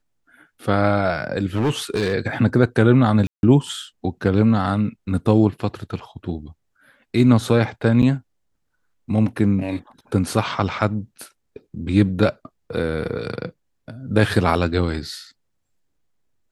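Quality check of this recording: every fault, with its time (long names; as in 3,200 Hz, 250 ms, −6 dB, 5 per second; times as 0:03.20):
0:01.56–0:02.13: clipping −15.5 dBFS
0:03.27–0:03.43: drop-out 161 ms
0:08.02–0:08.03: drop-out 7.9 ms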